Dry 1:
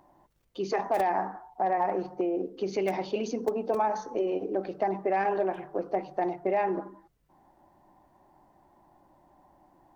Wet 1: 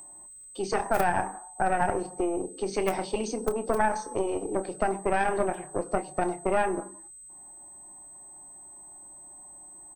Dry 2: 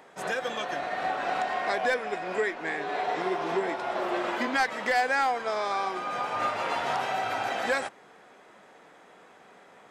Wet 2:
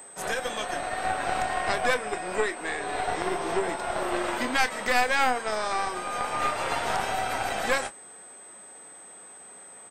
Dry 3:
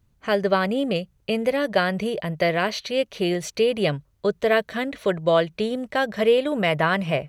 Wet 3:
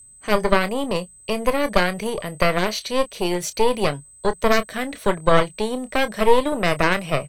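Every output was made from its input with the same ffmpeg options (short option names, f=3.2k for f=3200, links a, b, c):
-filter_complex "[0:a]acrossover=split=240|3100[a][b][c];[a]alimiter=level_in=9.5dB:limit=-24dB:level=0:latency=1,volume=-9.5dB[d];[b]aeval=exprs='0.473*(cos(1*acos(clip(val(0)/0.473,-1,1)))-cos(1*PI/2))+0.211*(cos(4*acos(clip(val(0)/0.473,-1,1)))-cos(4*PI/2))':c=same[e];[c]crystalizer=i=1.5:c=0[f];[d][e][f]amix=inputs=3:normalize=0,aeval=exprs='val(0)+0.00708*sin(2*PI*8200*n/s)':c=same,asplit=2[g][h];[h]adelay=28,volume=-12.5dB[i];[g][i]amix=inputs=2:normalize=0"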